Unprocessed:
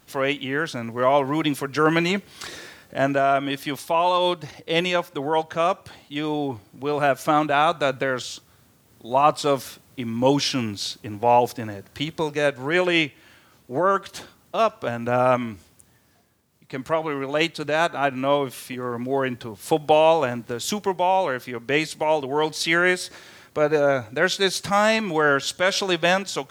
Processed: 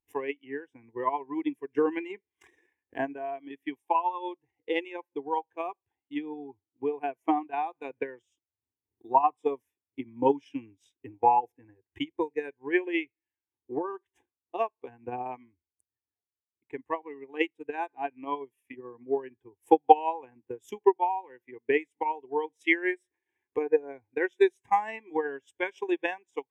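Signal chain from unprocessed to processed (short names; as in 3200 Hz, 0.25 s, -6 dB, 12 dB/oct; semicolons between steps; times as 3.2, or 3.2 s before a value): fixed phaser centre 890 Hz, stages 8; transient shaper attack +12 dB, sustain -7 dB; spectral expander 1.5:1; gain -7 dB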